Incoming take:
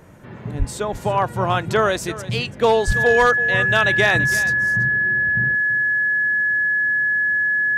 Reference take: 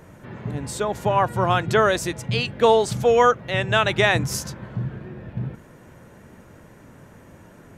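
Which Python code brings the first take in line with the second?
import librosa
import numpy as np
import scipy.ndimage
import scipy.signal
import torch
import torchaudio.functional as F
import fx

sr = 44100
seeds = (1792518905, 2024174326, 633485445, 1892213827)

y = fx.fix_declip(x, sr, threshold_db=-8.0)
y = fx.notch(y, sr, hz=1700.0, q=30.0)
y = fx.fix_deplosive(y, sr, at_s=(0.58, 2.86))
y = fx.fix_echo_inverse(y, sr, delay_ms=332, level_db=-15.5)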